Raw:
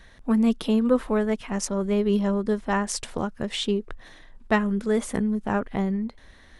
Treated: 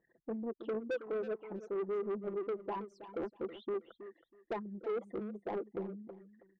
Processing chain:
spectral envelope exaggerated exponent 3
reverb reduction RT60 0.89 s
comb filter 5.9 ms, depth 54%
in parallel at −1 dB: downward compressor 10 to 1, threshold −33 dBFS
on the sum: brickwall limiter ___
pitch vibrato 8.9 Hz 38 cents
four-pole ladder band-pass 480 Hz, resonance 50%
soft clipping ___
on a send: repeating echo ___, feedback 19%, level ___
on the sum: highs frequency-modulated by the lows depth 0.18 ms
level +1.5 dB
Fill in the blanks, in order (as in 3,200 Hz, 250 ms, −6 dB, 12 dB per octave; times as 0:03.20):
−12.5 dBFS, −33.5 dBFS, 322 ms, −13 dB